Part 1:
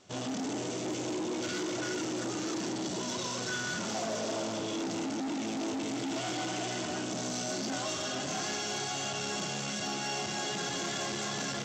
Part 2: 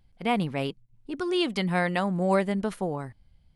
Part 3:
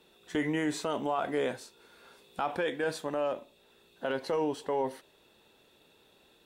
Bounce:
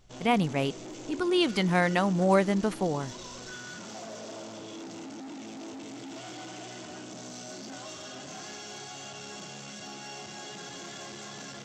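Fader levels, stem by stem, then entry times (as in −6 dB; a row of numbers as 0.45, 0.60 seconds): −7.5 dB, +1.0 dB, muted; 0.00 s, 0.00 s, muted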